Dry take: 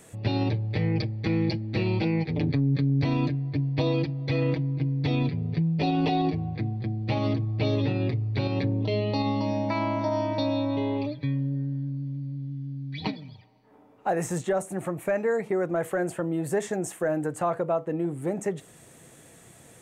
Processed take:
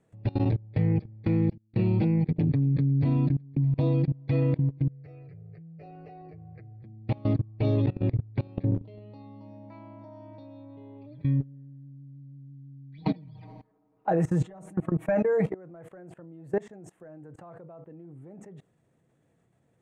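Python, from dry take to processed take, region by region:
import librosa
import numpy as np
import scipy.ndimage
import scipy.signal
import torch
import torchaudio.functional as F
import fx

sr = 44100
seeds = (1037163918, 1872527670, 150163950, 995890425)

y = fx.chain(x, sr, fx.gate_hold(open_db=-18.0, close_db=-24.0, hold_ms=71.0, range_db=-21, attack_ms=1.4, release_ms=100.0),
    fx.peak_eq(hz=180.0, db=5.0, octaves=1.4),
    fx.echo_single(ms=611, db=-21.5), at=(1.5, 4.13))
y = fx.chain(y, sr, fx.low_shelf(hz=350.0, db=-5.0),
    fx.fixed_phaser(hz=940.0, stages=6), at=(4.88, 6.83))
y = fx.chain(y, sr, fx.comb(ms=6.3, depth=0.94),
    fx.sustainer(db_per_s=47.0), at=(12.98, 15.52))
y = fx.lowpass(y, sr, hz=1200.0, slope=6)
y = fx.peak_eq(y, sr, hz=140.0, db=4.5, octaves=1.5)
y = fx.level_steps(y, sr, step_db=23)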